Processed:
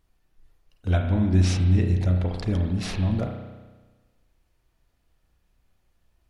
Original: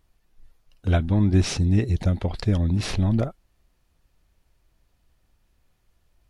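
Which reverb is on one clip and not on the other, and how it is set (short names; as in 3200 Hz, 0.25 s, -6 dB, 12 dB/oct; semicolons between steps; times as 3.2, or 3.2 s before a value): spring tank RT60 1.3 s, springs 33 ms, chirp 50 ms, DRR 3 dB; gain -3.5 dB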